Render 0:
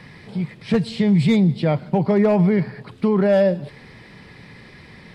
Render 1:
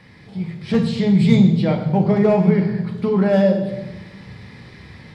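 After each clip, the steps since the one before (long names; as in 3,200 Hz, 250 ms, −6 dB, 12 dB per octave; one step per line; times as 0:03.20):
automatic gain control gain up to 5 dB
on a send at −3 dB: convolution reverb RT60 1.1 s, pre-delay 3 ms
on the sum: level −6 dB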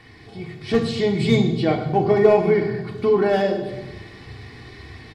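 comb filter 2.7 ms, depth 76%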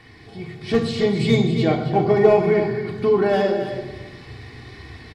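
single-tap delay 272 ms −9.5 dB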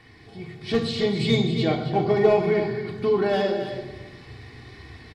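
dynamic equaliser 3,800 Hz, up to +6 dB, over −46 dBFS, Q 1.5
level −4 dB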